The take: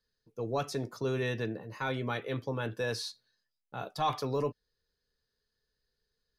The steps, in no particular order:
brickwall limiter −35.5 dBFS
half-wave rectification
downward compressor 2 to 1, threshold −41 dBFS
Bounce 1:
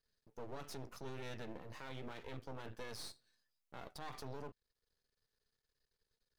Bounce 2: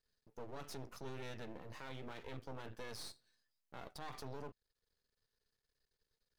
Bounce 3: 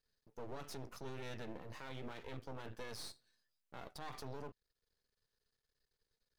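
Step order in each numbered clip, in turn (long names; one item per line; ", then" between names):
downward compressor, then half-wave rectification, then brickwall limiter
downward compressor, then brickwall limiter, then half-wave rectification
half-wave rectification, then downward compressor, then brickwall limiter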